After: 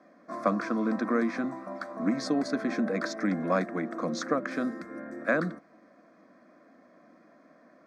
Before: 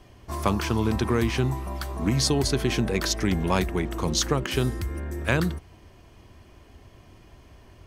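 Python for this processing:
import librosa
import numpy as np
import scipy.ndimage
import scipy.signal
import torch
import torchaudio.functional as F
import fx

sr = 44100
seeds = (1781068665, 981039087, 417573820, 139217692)

y = scipy.signal.sosfilt(scipy.signal.bessel(6, 280.0, 'highpass', norm='mag', fs=sr, output='sos'), x)
y = fx.spacing_loss(y, sr, db_at_10k=29)
y = fx.fixed_phaser(y, sr, hz=590.0, stages=8)
y = F.gain(torch.from_numpy(y), 5.0).numpy()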